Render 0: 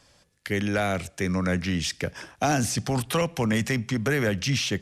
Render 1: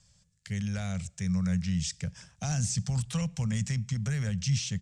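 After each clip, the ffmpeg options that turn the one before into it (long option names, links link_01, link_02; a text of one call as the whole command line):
ffmpeg -i in.wav -af "firequalizer=gain_entry='entry(180,0);entry(300,-28);entry(490,-18);entry(7600,1);entry(12000,-25)':delay=0.05:min_phase=1" out.wav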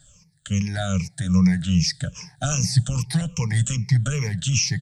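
ffmpeg -i in.wav -af "afftfilt=real='re*pow(10,21/40*sin(2*PI*(0.81*log(max(b,1)*sr/1024/100)/log(2)-(-2.5)*(pts-256)/sr)))':imag='im*pow(10,21/40*sin(2*PI*(0.81*log(max(b,1)*sr/1024/100)/log(2)-(-2.5)*(pts-256)/sr)))':win_size=1024:overlap=0.75,aecho=1:1:6.7:0.39,volume=5dB" out.wav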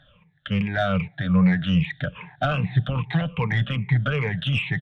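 ffmpeg -i in.wav -filter_complex "[0:a]aresample=8000,aresample=44100,asplit=2[link_01][link_02];[link_02]highpass=frequency=720:poles=1,volume=17dB,asoftclip=type=tanh:threshold=-7.5dB[link_03];[link_01][link_03]amix=inputs=2:normalize=0,lowpass=frequency=1400:poles=1,volume=-6dB" out.wav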